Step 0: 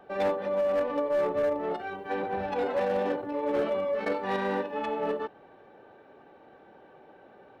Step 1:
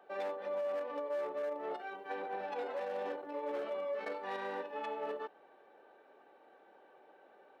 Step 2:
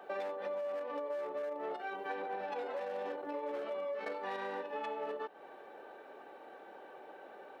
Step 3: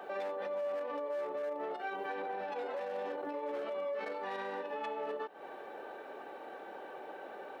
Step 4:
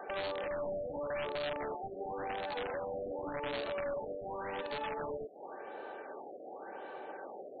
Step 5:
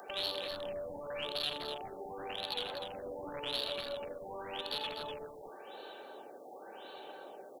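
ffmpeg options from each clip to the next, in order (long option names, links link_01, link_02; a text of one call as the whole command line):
ffmpeg -i in.wav -af "highpass=390,alimiter=limit=-23.5dB:level=0:latency=1:release=242,volume=-6.5dB" out.wav
ffmpeg -i in.wav -af "acompressor=threshold=-47dB:ratio=5,volume=9.5dB" out.wav
ffmpeg -i in.wav -af "alimiter=level_in=12dB:limit=-24dB:level=0:latency=1:release=208,volume=-12dB,volume=5.5dB" out.wav
ffmpeg -i in.wav -af "areverse,acompressor=mode=upward:threshold=-45dB:ratio=2.5,areverse,aeval=exprs='(mod(37.6*val(0)+1,2)-1)/37.6':channel_layout=same,afftfilt=real='re*lt(b*sr/1024,730*pow(4600/730,0.5+0.5*sin(2*PI*0.9*pts/sr)))':imag='im*lt(b*sr/1024,730*pow(4600/730,0.5+0.5*sin(2*PI*0.9*pts/sr)))':win_size=1024:overlap=0.75,volume=1dB" out.wav
ffmpeg -i in.wav -filter_complex "[0:a]aexciter=amount=11.9:drive=5.1:freq=3100,asoftclip=type=tanh:threshold=-21dB,asplit=2[link_01][link_02];[link_02]aecho=0:1:84.55|247.8:0.282|0.398[link_03];[link_01][link_03]amix=inputs=2:normalize=0,volume=-4.5dB" out.wav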